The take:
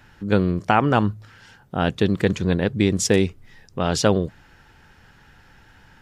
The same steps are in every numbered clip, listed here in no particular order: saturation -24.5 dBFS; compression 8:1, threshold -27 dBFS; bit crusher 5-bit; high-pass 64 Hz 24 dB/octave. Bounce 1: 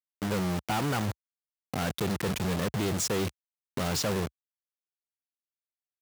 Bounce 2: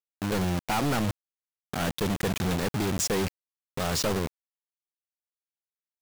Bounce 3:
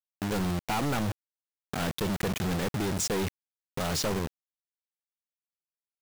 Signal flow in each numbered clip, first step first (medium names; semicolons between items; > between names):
saturation > bit crusher > compression > high-pass; high-pass > saturation > compression > bit crusher; high-pass > saturation > bit crusher > compression